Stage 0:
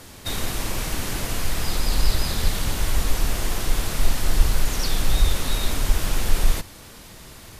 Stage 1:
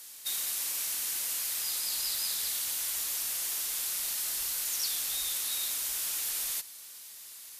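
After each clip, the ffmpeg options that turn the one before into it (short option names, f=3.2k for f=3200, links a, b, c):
-af "aderivative"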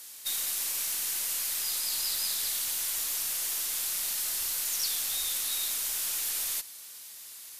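-af "aeval=exprs='0.112*(cos(1*acos(clip(val(0)/0.112,-1,1)))-cos(1*PI/2))+0.00891*(cos(2*acos(clip(val(0)/0.112,-1,1)))-cos(2*PI/2))+0.00562*(cos(4*acos(clip(val(0)/0.112,-1,1)))-cos(4*PI/2))+0.00398*(cos(6*acos(clip(val(0)/0.112,-1,1)))-cos(6*PI/2))':c=same,volume=1.5dB"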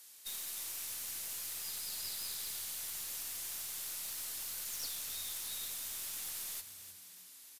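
-filter_complex "[0:a]aeval=exprs='(tanh(12.6*val(0)+0.65)-tanh(0.65))/12.6':c=same,asplit=6[a][b][c][d][e][f];[b]adelay=307,afreqshift=-91,volume=-11.5dB[g];[c]adelay=614,afreqshift=-182,volume=-17.9dB[h];[d]adelay=921,afreqshift=-273,volume=-24.3dB[i];[e]adelay=1228,afreqshift=-364,volume=-30.6dB[j];[f]adelay=1535,afreqshift=-455,volume=-37dB[k];[a][g][h][i][j][k]amix=inputs=6:normalize=0,volume=-7dB"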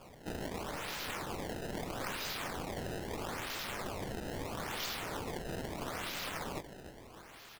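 -af "acrusher=samples=22:mix=1:aa=0.000001:lfo=1:lforange=35.2:lforate=0.77,volume=2dB"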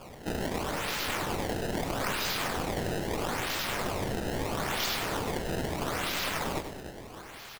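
-af "aecho=1:1:99|198|297|396:0.335|0.121|0.0434|0.0156,volume=7.5dB"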